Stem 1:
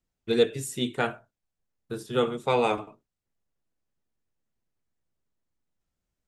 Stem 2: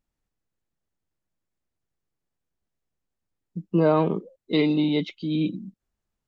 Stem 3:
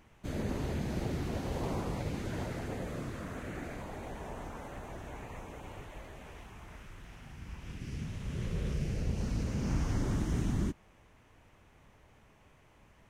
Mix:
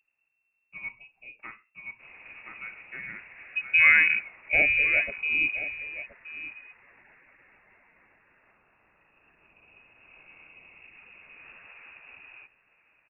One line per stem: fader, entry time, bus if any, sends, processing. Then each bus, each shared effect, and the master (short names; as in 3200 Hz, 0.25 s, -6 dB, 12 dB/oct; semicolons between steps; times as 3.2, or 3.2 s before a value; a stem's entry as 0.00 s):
-16.0 dB, 0.45 s, no send, echo send -3.5 dB, dry
+2.5 dB, 0.00 s, no send, echo send -14 dB, dry
-8.0 dB, 1.75 s, no send, echo send -17 dB, HPF 460 Hz 6 dB/oct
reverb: off
echo: echo 1.023 s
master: bell 320 Hz -6.5 dB 0.42 oct; inverted band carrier 2700 Hz